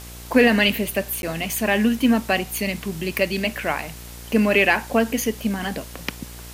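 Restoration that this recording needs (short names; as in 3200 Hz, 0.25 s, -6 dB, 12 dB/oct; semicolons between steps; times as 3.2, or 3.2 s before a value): de-click; de-hum 59.4 Hz, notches 18; interpolate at 1.22, 11 ms; denoiser 28 dB, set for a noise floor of -38 dBFS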